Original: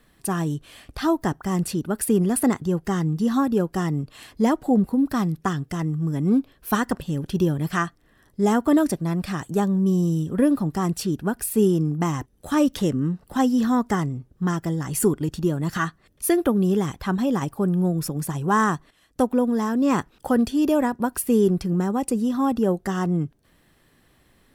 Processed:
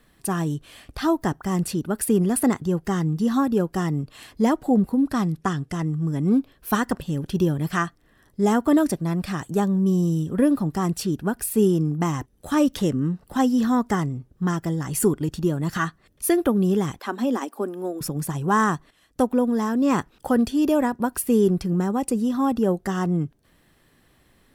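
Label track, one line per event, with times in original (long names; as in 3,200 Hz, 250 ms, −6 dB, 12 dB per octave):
4.990000	6.300000	low-pass filter 12,000 Hz 24 dB per octave
16.990000	18.010000	elliptic high-pass filter 230 Hz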